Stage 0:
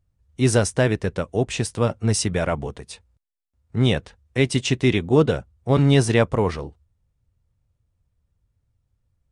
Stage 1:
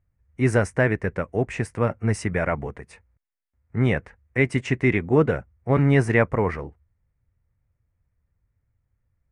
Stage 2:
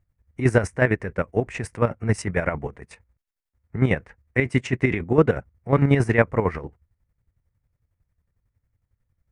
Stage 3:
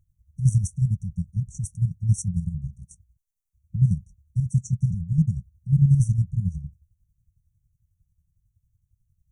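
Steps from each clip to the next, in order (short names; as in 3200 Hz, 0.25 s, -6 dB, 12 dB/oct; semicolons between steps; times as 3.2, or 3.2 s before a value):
resonant high shelf 2700 Hz -9.5 dB, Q 3; gain -2 dB
chopper 11 Hz, depth 60%, duty 40%; gain +3 dB
brick-wall FIR band-stop 200–5600 Hz; gain +3.5 dB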